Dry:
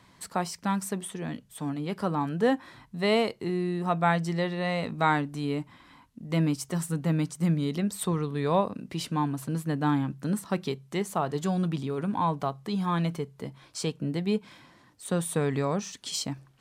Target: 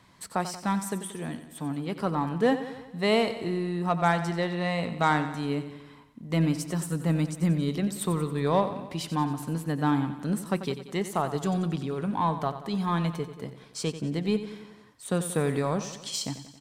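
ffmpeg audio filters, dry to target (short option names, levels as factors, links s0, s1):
-filter_complex "[0:a]aeval=exprs='0.282*(cos(1*acos(clip(val(0)/0.282,-1,1)))-cos(1*PI/2))+0.0178*(cos(5*acos(clip(val(0)/0.282,-1,1)))-cos(5*PI/2))+0.0158*(cos(7*acos(clip(val(0)/0.282,-1,1)))-cos(7*PI/2))':c=same,asplit=2[s0][s1];[s1]aecho=0:1:91|182|273|364|455|546:0.251|0.146|0.0845|0.049|0.0284|0.0165[s2];[s0][s2]amix=inputs=2:normalize=0"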